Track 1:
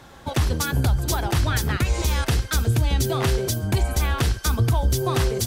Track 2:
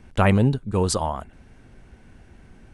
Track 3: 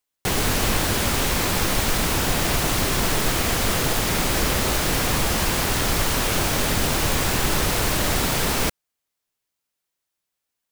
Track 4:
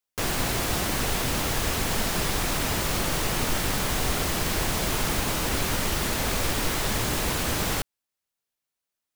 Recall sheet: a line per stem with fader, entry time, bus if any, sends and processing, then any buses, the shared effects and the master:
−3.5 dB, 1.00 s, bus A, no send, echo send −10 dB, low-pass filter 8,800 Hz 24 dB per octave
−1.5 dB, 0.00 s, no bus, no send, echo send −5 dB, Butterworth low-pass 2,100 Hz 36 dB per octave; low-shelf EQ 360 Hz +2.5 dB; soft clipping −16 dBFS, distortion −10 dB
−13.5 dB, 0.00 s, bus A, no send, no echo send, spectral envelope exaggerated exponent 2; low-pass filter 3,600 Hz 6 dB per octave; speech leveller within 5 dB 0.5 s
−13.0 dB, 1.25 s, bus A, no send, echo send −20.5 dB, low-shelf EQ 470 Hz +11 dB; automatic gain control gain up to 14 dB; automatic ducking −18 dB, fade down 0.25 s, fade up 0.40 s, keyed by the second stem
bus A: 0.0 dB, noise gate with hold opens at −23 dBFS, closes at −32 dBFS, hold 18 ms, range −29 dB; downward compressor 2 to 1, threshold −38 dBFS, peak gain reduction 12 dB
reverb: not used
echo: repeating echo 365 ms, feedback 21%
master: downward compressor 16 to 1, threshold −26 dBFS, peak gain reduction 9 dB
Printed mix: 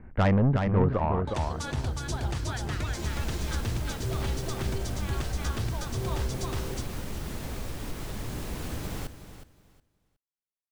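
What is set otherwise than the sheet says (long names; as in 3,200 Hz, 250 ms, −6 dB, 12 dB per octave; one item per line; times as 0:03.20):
stem 3: muted
master: missing downward compressor 16 to 1, threshold −26 dBFS, peak gain reduction 9 dB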